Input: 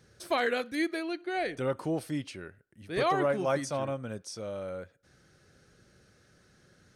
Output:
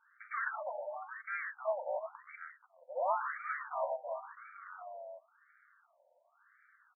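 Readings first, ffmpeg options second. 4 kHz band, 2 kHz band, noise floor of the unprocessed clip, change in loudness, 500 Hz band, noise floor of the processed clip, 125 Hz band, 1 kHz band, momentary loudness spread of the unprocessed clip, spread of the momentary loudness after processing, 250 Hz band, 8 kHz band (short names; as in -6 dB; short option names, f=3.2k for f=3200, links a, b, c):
under -40 dB, -4.5 dB, -64 dBFS, -7.5 dB, -8.0 dB, -72 dBFS, under -40 dB, -3.5 dB, 13 LU, 15 LU, under -40 dB, under -35 dB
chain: -filter_complex "[0:a]aeval=exprs='val(0)*sin(2*PI*110*n/s)':c=same,bandreject=f=156.1:t=h:w=4,bandreject=f=312.2:t=h:w=4,bandreject=f=468.3:t=h:w=4,bandreject=f=624.4:t=h:w=4,bandreject=f=780.5:t=h:w=4,aexciter=amount=10.2:drive=2.1:freq=3.2k,asplit=2[a][b];[b]aeval=exprs='0.0562*(abs(mod(val(0)/0.0562+3,4)-2)-1)':c=same,volume=-3.5dB[c];[a][c]amix=inputs=2:normalize=0,bandreject=f=820:w=12,asplit=2[d][e];[e]aecho=0:1:354:0.398[f];[d][f]amix=inputs=2:normalize=0,asoftclip=type=tanh:threshold=-19.5dB,afftfilt=real='re*between(b*sr/1024,670*pow(1700/670,0.5+0.5*sin(2*PI*0.94*pts/sr))/1.41,670*pow(1700/670,0.5+0.5*sin(2*PI*0.94*pts/sr))*1.41)':imag='im*between(b*sr/1024,670*pow(1700/670,0.5+0.5*sin(2*PI*0.94*pts/sr))/1.41,670*pow(1700/670,0.5+0.5*sin(2*PI*0.94*pts/sr))*1.41)':win_size=1024:overlap=0.75,volume=1dB"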